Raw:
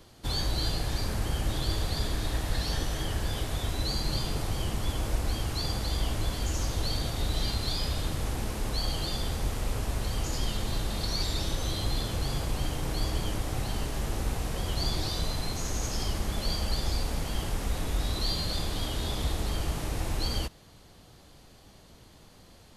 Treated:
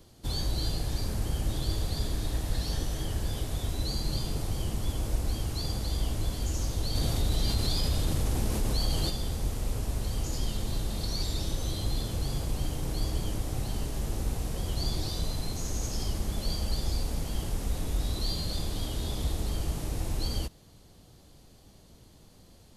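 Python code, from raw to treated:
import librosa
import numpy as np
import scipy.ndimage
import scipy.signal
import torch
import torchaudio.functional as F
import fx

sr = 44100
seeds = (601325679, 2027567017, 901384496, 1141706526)

y = fx.peak_eq(x, sr, hz=1600.0, db=-7.5, octaves=2.7)
y = fx.env_flatten(y, sr, amount_pct=50, at=(6.94, 9.09), fade=0.02)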